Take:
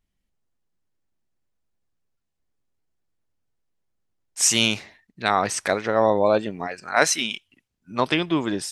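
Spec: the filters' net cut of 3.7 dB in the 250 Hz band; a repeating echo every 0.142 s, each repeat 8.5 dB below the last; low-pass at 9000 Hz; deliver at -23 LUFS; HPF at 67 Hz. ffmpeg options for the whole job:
-af "highpass=67,lowpass=9k,equalizer=f=250:t=o:g=-5,aecho=1:1:142|284|426|568:0.376|0.143|0.0543|0.0206,volume=-0.5dB"

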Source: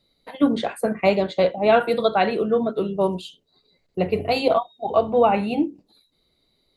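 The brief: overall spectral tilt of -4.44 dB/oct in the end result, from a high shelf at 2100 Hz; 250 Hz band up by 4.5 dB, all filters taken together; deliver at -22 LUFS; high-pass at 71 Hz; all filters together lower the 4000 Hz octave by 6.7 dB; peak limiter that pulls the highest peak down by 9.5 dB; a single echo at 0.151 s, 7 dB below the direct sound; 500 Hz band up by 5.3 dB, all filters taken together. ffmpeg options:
-af "highpass=71,equalizer=f=250:t=o:g=4,equalizer=f=500:t=o:g=6,highshelf=f=2.1k:g=-6,equalizer=f=4k:t=o:g=-3,alimiter=limit=-10.5dB:level=0:latency=1,aecho=1:1:151:0.447,volume=-2dB"

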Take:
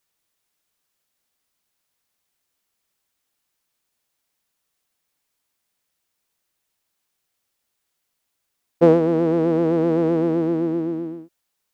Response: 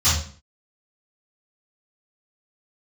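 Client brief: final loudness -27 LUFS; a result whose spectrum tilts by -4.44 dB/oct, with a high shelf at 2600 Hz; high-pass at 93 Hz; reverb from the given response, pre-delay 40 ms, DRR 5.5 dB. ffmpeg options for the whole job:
-filter_complex "[0:a]highpass=93,highshelf=f=2.6k:g=-5,asplit=2[a][b];[1:a]atrim=start_sample=2205,adelay=40[c];[b][c]afir=irnorm=-1:irlink=0,volume=-22.5dB[d];[a][d]amix=inputs=2:normalize=0,volume=-8dB"

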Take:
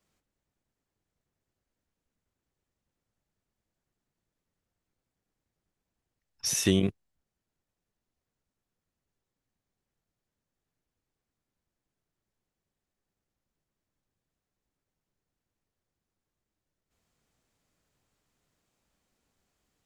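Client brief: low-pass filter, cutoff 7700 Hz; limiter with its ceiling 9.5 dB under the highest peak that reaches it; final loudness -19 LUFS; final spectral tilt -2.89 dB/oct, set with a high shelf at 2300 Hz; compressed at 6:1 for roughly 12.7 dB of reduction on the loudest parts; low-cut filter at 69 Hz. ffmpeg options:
-af "highpass=69,lowpass=7.7k,highshelf=f=2.3k:g=-4.5,acompressor=threshold=-33dB:ratio=6,volume=21dB,alimiter=limit=-8dB:level=0:latency=1"

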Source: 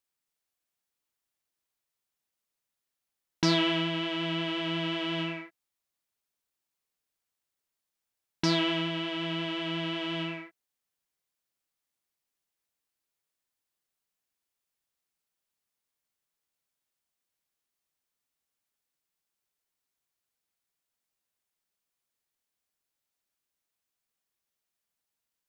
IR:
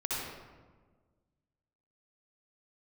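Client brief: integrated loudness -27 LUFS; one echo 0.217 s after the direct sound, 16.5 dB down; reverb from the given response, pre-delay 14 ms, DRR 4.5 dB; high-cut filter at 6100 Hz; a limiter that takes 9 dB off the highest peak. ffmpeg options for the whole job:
-filter_complex "[0:a]lowpass=6.1k,alimiter=limit=-22dB:level=0:latency=1,aecho=1:1:217:0.15,asplit=2[a][b];[1:a]atrim=start_sample=2205,adelay=14[c];[b][c]afir=irnorm=-1:irlink=0,volume=-10.5dB[d];[a][d]amix=inputs=2:normalize=0,volume=6.5dB"

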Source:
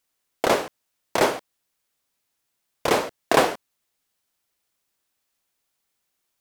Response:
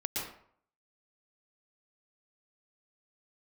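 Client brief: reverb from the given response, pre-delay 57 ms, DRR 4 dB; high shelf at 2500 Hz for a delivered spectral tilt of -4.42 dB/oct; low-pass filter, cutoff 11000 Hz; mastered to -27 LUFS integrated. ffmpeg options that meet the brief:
-filter_complex "[0:a]lowpass=11k,highshelf=f=2.5k:g=-7.5,asplit=2[a][b];[1:a]atrim=start_sample=2205,adelay=57[c];[b][c]afir=irnorm=-1:irlink=0,volume=-8dB[d];[a][d]amix=inputs=2:normalize=0,volume=-3dB"

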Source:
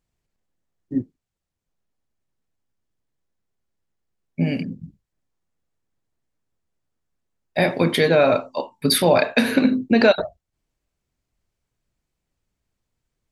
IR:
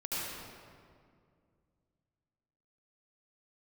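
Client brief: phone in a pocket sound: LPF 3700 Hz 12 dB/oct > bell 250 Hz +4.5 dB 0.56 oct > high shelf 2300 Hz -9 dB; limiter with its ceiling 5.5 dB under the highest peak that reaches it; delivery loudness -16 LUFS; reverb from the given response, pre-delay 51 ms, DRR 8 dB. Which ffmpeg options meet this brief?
-filter_complex "[0:a]alimiter=limit=-8.5dB:level=0:latency=1,asplit=2[a][b];[1:a]atrim=start_sample=2205,adelay=51[c];[b][c]afir=irnorm=-1:irlink=0,volume=-13dB[d];[a][d]amix=inputs=2:normalize=0,lowpass=3.7k,equalizer=f=250:t=o:w=0.56:g=4.5,highshelf=f=2.3k:g=-9,volume=4.5dB"

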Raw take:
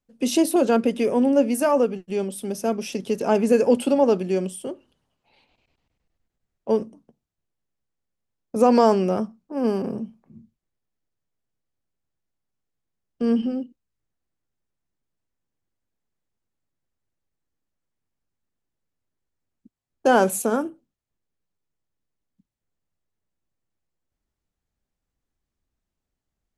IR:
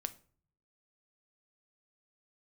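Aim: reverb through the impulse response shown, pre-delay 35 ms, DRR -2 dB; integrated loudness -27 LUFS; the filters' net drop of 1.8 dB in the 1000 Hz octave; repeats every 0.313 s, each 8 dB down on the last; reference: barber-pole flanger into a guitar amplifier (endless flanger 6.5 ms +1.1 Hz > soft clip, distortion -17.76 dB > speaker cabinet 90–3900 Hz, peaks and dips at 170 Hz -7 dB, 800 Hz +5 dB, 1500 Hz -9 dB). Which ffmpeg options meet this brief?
-filter_complex "[0:a]equalizer=f=1k:t=o:g=-6.5,aecho=1:1:313|626|939|1252|1565:0.398|0.159|0.0637|0.0255|0.0102,asplit=2[a][b];[1:a]atrim=start_sample=2205,adelay=35[c];[b][c]afir=irnorm=-1:irlink=0,volume=3.5dB[d];[a][d]amix=inputs=2:normalize=0,asplit=2[e][f];[f]adelay=6.5,afreqshift=1.1[g];[e][g]amix=inputs=2:normalize=1,asoftclip=threshold=-11dB,highpass=90,equalizer=f=170:t=q:w=4:g=-7,equalizer=f=800:t=q:w=4:g=5,equalizer=f=1.5k:t=q:w=4:g=-9,lowpass=f=3.9k:w=0.5412,lowpass=f=3.9k:w=1.3066,volume=-3.5dB"

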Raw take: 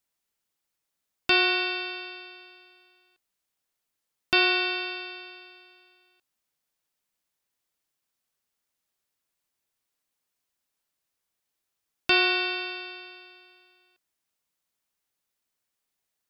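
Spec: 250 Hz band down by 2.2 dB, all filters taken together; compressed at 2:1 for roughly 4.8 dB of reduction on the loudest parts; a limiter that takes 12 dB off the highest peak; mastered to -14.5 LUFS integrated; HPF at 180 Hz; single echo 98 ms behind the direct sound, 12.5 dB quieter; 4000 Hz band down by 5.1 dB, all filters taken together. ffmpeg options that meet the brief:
-af "highpass=180,equalizer=f=250:t=o:g=-4,equalizer=f=4k:t=o:g=-6,acompressor=threshold=-28dB:ratio=2,alimiter=limit=-24dB:level=0:latency=1,aecho=1:1:98:0.237,volume=21.5dB"

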